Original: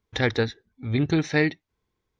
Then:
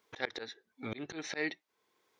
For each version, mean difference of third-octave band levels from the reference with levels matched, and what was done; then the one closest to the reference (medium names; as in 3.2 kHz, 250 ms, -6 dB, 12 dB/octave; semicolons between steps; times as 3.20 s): 7.0 dB: high-pass 430 Hz 12 dB/octave; slow attack 798 ms; trim +10 dB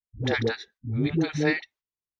9.5 dB: gate -48 dBFS, range -26 dB; phase dispersion highs, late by 116 ms, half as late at 400 Hz; trim -2 dB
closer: first